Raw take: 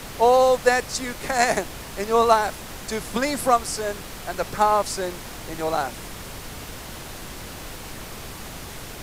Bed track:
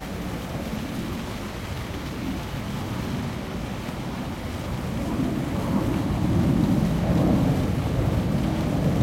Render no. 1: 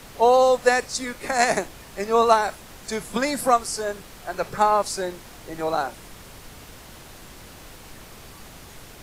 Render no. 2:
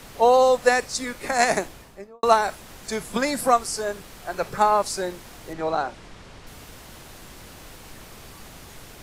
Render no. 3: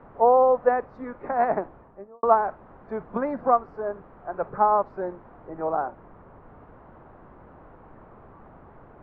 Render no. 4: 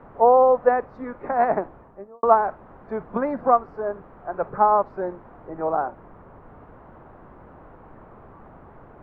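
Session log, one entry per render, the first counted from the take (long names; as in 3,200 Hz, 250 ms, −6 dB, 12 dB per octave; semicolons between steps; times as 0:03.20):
noise reduction from a noise print 7 dB
0:01.65–0:02.23: fade out and dull; 0:05.53–0:06.47: high-frequency loss of the air 83 metres
low-pass filter 1,200 Hz 24 dB per octave; spectral tilt +1.5 dB per octave
level +2.5 dB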